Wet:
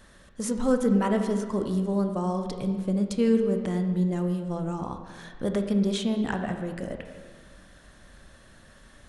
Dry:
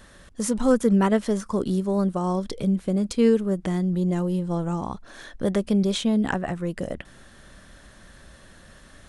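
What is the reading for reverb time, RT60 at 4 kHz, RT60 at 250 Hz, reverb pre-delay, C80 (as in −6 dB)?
1.6 s, 1.4 s, 1.7 s, 16 ms, 8.5 dB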